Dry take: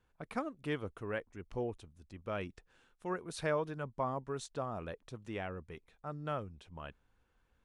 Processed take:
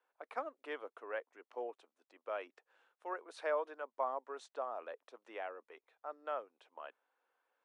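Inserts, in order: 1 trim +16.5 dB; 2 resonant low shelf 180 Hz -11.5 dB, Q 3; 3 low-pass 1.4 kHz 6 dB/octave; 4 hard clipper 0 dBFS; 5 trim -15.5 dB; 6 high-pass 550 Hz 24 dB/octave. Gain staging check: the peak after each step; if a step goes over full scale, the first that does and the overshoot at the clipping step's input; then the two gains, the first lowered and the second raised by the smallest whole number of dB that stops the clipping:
-5.0 dBFS, -3.0 dBFS, -4.0 dBFS, -4.0 dBFS, -19.5 dBFS, -24.0 dBFS; nothing clips

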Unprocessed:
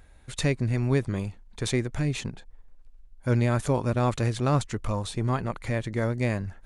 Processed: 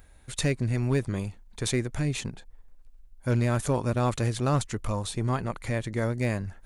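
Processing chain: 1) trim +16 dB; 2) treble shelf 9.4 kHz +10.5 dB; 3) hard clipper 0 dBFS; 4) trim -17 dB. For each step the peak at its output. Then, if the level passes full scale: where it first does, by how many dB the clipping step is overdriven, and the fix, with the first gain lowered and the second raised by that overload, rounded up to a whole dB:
+4.0 dBFS, +4.5 dBFS, 0.0 dBFS, -17.0 dBFS; step 1, 4.5 dB; step 1 +11 dB, step 4 -12 dB

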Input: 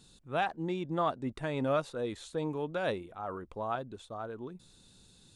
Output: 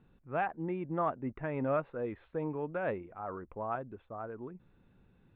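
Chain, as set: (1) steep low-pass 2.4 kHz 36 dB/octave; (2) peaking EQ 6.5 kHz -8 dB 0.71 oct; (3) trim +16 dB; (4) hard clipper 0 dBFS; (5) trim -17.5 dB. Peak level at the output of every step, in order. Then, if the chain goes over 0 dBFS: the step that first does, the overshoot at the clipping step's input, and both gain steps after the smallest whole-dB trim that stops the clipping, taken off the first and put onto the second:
-19.0 dBFS, -19.0 dBFS, -3.0 dBFS, -3.0 dBFS, -20.5 dBFS; nothing clips

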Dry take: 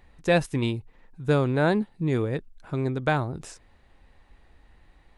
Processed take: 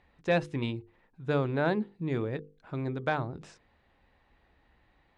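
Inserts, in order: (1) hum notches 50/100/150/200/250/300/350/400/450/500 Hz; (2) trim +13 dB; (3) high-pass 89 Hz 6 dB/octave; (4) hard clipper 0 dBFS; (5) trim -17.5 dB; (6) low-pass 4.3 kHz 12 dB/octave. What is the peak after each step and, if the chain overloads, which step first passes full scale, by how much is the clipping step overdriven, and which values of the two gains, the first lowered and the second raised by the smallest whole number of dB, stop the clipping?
-10.0 dBFS, +3.0 dBFS, +3.0 dBFS, 0.0 dBFS, -17.5 dBFS, -17.0 dBFS; step 2, 3.0 dB; step 2 +10 dB, step 5 -14.5 dB

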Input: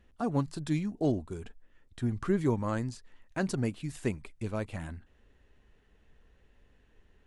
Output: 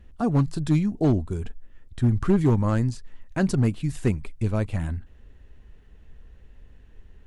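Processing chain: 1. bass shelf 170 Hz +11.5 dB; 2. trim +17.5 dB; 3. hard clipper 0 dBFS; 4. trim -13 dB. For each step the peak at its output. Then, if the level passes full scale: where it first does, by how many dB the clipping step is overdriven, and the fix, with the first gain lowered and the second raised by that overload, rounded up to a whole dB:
-11.0 dBFS, +6.5 dBFS, 0.0 dBFS, -13.0 dBFS; step 2, 6.5 dB; step 2 +10.5 dB, step 4 -6 dB

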